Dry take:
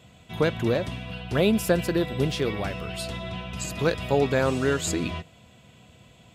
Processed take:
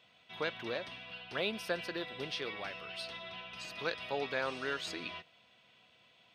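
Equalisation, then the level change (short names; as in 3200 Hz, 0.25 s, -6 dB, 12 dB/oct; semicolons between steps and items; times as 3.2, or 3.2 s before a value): polynomial smoothing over 15 samples; HPF 1400 Hz 6 dB/oct; -4.5 dB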